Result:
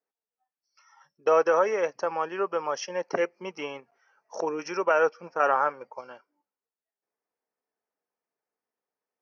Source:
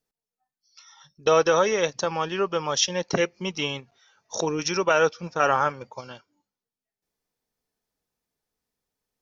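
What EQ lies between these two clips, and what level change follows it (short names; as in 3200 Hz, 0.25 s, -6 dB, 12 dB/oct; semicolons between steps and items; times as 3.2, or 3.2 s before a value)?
running mean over 12 samples; HPF 410 Hz 12 dB/oct; 0.0 dB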